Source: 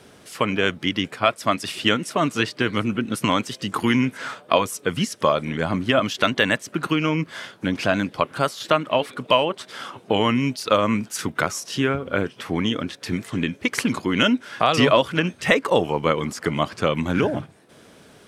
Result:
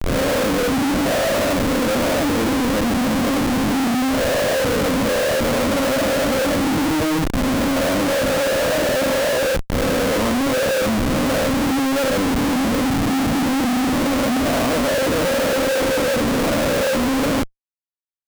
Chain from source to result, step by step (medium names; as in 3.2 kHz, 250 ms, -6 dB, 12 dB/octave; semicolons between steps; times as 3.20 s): reverse spectral sustain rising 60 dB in 1.35 s; waveshaping leveller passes 2; two resonant band-passes 380 Hz, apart 0.95 oct; on a send: flutter echo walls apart 7.1 m, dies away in 0.32 s; on the sum: Schmitt trigger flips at -29 dBFS